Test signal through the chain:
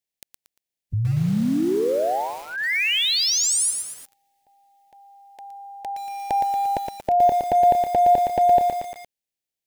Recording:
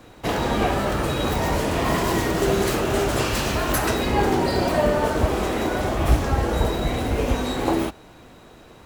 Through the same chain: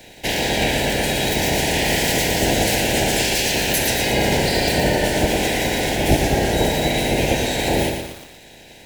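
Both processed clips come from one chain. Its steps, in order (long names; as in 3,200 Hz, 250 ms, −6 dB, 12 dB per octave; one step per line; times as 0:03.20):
ceiling on every frequency bin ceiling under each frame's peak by 16 dB
in parallel at −1 dB: brickwall limiter −16.5 dBFS
on the sum: Butterworth band-reject 1,200 Hz, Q 1.3
feedback echo at a low word length 116 ms, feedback 55%, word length 6 bits, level −5 dB
level −1 dB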